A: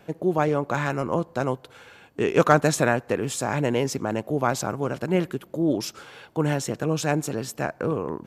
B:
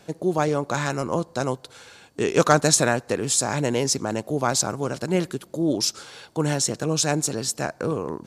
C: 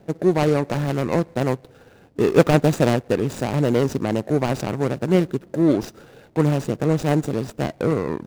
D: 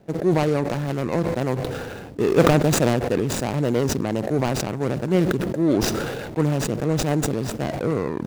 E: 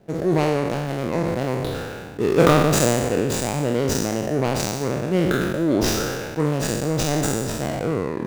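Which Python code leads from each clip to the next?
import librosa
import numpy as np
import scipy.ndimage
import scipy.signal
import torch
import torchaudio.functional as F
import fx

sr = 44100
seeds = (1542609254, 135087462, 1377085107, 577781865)

y1 = fx.band_shelf(x, sr, hz=6300.0, db=10.5, octaves=1.7)
y2 = scipy.ndimage.median_filter(y1, 41, mode='constant')
y2 = y2 * 10.0 ** (6.0 / 20.0)
y3 = fx.sustainer(y2, sr, db_per_s=28.0)
y3 = y3 * 10.0 ** (-3.0 / 20.0)
y4 = fx.spec_trails(y3, sr, decay_s=1.17)
y4 = y4 * 10.0 ** (-2.0 / 20.0)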